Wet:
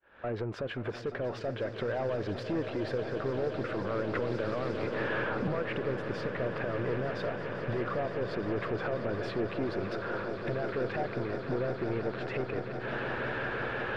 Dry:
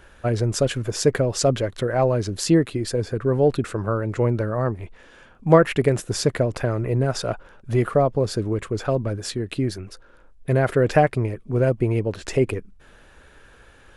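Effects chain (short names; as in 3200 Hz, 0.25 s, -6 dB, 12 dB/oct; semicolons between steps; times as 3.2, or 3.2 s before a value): recorder AGC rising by 57 dB/s; HPF 520 Hz 6 dB/oct; expander -45 dBFS; high shelf 6200 Hz -11 dB; limiter -12 dBFS, peak gain reduction 10 dB; soft clip -19.5 dBFS, distortion -13 dB; air absorption 380 m; swelling echo 0.176 s, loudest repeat 8, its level -13.5 dB; 4.15–5.48 three-band squash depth 100%; gain -7 dB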